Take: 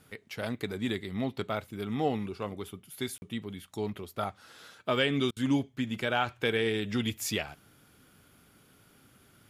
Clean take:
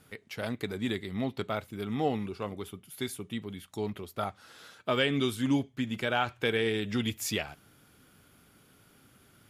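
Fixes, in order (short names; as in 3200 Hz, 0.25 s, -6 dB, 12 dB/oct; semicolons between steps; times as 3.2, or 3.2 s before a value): interpolate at 3.18, 41 ms; interpolate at 5.31, 54 ms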